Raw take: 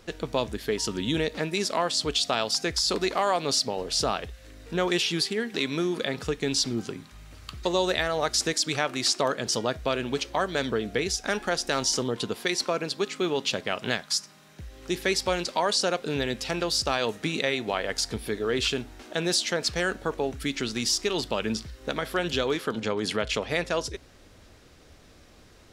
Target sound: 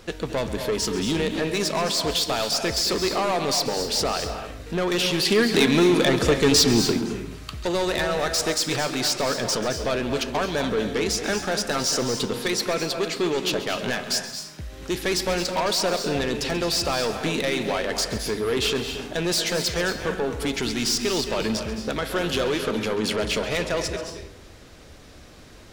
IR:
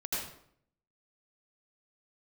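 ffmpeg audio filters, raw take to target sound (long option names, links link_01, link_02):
-filter_complex "[0:a]asoftclip=type=tanh:threshold=-25.5dB,asettb=1/sr,asplit=3[link_01][link_02][link_03];[link_01]atrim=end=5.254[link_04];[link_02]atrim=start=5.25:end=6.99,asetpts=PTS-STARTPTS,afade=type=in:duration=0.004:curve=qsin,afade=type=out:start_time=1.736:duration=0.004:curve=qsin,acontrast=71[link_05];[link_03]atrim=start=6.986[link_06];[link_04][link_05]acrossfade=duration=0.004:curve1=hsin:curve2=qsin[link_07];[link_07][link_06]acrossfade=duration=0.004:curve1=qsin:curve2=hsin,asplit=2[link_08][link_09];[1:a]atrim=start_sample=2205,adelay=135[link_10];[link_09][link_10]afir=irnorm=-1:irlink=0,volume=-10.5dB[link_11];[link_08][link_11]amix=inputs=2:normalize=0,volume=6dB"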